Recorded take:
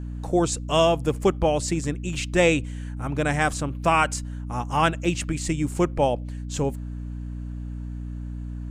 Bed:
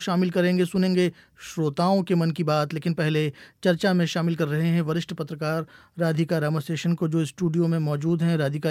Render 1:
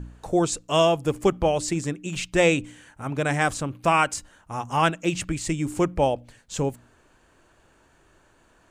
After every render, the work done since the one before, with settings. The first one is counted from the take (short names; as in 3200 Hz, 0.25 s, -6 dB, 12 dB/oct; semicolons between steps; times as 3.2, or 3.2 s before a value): de-hum 60 Hz, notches 5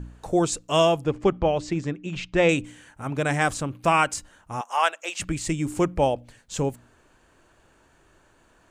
1.04–2.49 air absorption 150 m; 4.61–5.2 HPF 560 Hz 24 dB/oct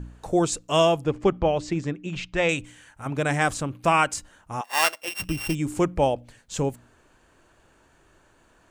2.33–3.06 bell 280 Hz -7 dB 2.1 oct; 4.64–5.55 sample sorter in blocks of 16 samples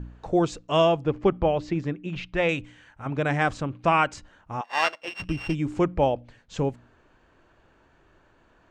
air absorption 160 m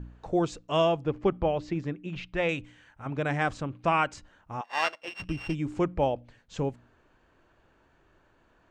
gain -4 dB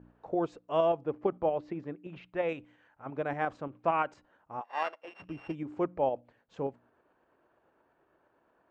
band-pass 630 Hz, Q 0.72; tremolo saw up 8.7 Hz, depth 40%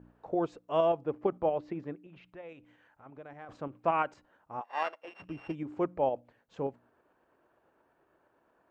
2.02–3.49 compressor 2:1, threshold -56 dBFS